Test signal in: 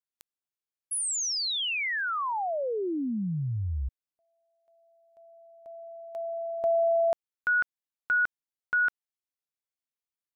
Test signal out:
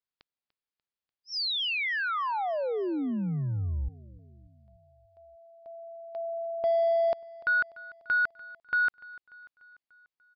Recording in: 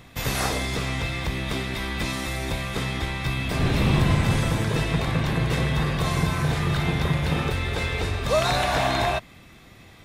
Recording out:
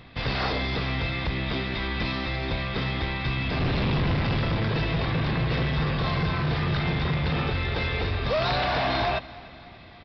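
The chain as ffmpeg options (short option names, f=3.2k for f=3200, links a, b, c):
-af "aresample=11025,asoftclip=type=hard:threshold=-21.5dB,aresample=44100,aecho=1:1:294|588|882|1176|1470:0.1|0.057|0.0325|0.0185|0.0106"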